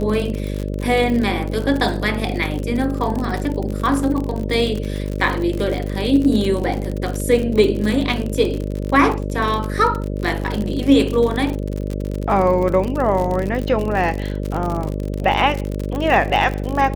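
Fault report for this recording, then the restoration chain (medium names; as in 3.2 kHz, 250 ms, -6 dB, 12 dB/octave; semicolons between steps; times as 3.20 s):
buzz 50 Hz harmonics 12 -24 dBFS
crackle 57 per s -22 dBFS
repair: de-click; de-hum 50 Hz, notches 12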